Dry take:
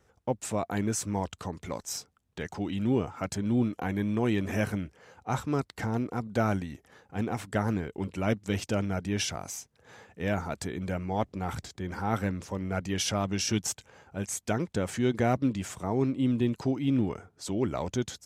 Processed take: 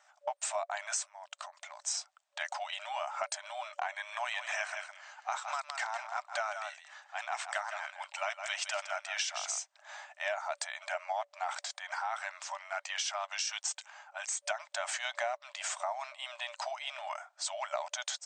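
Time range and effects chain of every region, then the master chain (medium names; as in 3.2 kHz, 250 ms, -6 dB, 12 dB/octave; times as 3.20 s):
1.04–1.82 s: compression 16:1, threshold -42 dBFS + tape noise reduction on one side only decoder only
3.93–9.59 s: high-pass 830 Hz + delay 162 ms -10.5 dB
11.94–14.45 s: high-pass 720 Hz 24 dB/octave + compression 1.5:1, threshold -42 dBFS + tape noise reduction on one side only decoder only
whole clip: FFT band-pass 580–8800 Hz; compression 12:1, threshold -37 dBFS; trim +6 dB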